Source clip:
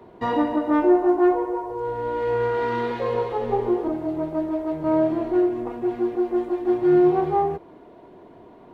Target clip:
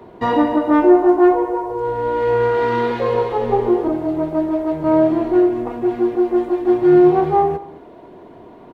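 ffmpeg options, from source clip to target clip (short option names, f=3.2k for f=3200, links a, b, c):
-filter_complex "[0:a]asplit=2[a][b];[b]adelay=215.7,volume=-20dB,highshelf=f=4k:g=-4.85[c];[a][c]amix=inputs=2:normalize=0,volume=6dB"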